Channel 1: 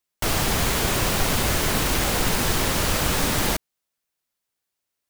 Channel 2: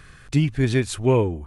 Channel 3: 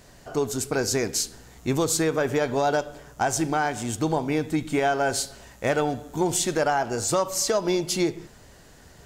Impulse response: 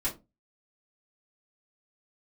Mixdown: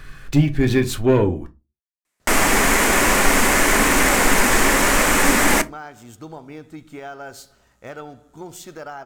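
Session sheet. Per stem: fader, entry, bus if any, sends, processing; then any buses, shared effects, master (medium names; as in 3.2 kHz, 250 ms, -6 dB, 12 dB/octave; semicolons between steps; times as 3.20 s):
0.0 dB, 2.05 s, send -15 dB, graphic EQ 125/250/500/1000/2000/4000/8000 Hz -10/+8/+3/+5/+11/-7/+11 dB
+2.0 dB, 0.00 s, send -8.5 dB, saturation -14 dBFS, distortion -16 dB
-12.5 dB, 2.20 s, no send, peaking EQ 1.3 kHz +9 dB 0.22 oct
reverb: on, RT60 0.25 s, pre-delay 3 ms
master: decimation joined by straight lines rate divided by 2×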